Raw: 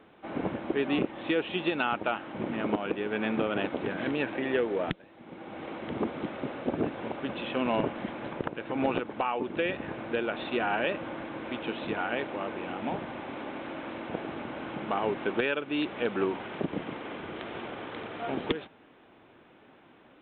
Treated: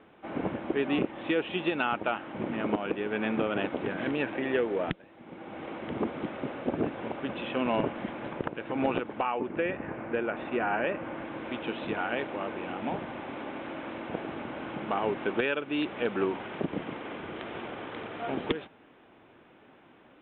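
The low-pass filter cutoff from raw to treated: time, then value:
low-pass filter 24 dB per octave
0:09.08 3,600 Hz
0:09.60 2,400 Hz
0:10.91 2,400 Hz
0:11.37 3,800 Hz

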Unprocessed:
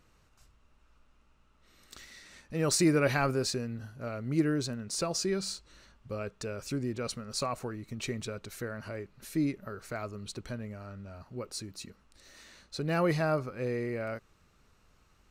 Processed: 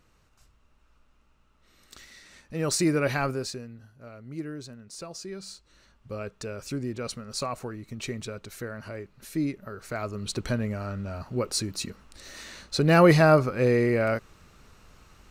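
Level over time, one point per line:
0:03.25 +1 dB
0:03.81 −8 dB
0:05.28 −8 dB
0:06.16 +1.5 dB
0:09.70 +1.5 dB
0:10.47 +11 dB

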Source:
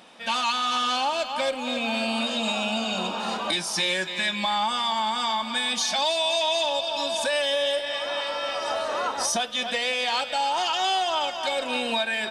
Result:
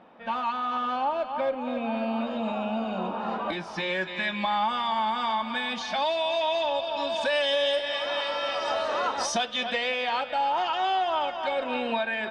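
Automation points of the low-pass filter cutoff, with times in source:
0:03.13 1,300 Hz
0:04.09 2,400 Hz
0:06.95 2,400 Hz
0:07.54 4,900 Hz
0:09.32 4,900 Hz
0:10.21 2,100 Hz

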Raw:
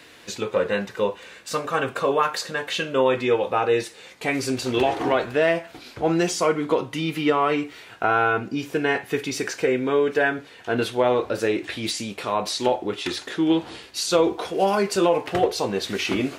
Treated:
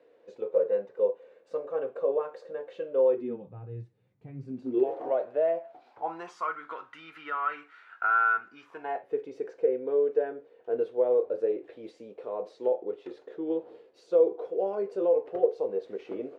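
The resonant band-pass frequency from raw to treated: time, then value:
resonant band-pass, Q 5.5
0:03.09 500 Hz
0:03.54 120 Hz
0:04.32 120 Hz
0:04.99 580 Hz
0:05.56 580 Hz
0:06.60 1,400 Hz
0:08.59 1,400 Hz
0:09.14 480 Hz

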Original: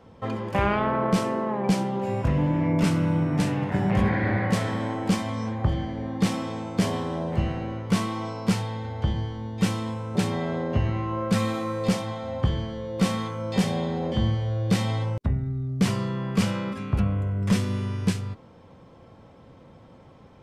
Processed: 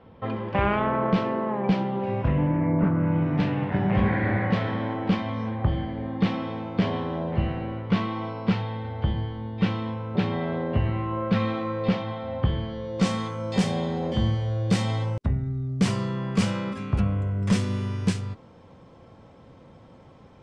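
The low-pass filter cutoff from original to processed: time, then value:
low-pass filter 24 dB per octave
0:02.23 3,700 Hz
0:02.91 1,500 Hz
0:03.28 3,700 Hz
0:12.59 3,700 Hz
0:13.15 9,500 Hz

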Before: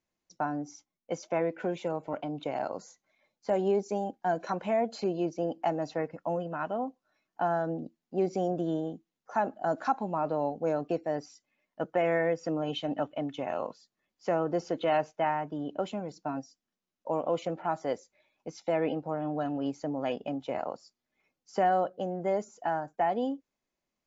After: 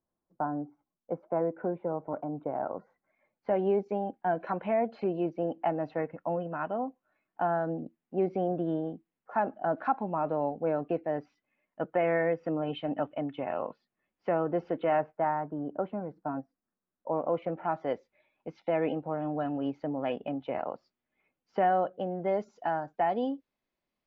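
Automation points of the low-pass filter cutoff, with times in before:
low-pass filter 24 dB per octave
0:02.44 1,300 Hz
0:03.56 2,700 Hz
0:14.69 2,700 Hz
0:15.23 1,700 Hz
0:17.09 1,700 Hz
0:17.81 3,100 Hz
0:21.81 3,100 Hz
0:22.67 4,600 Hz

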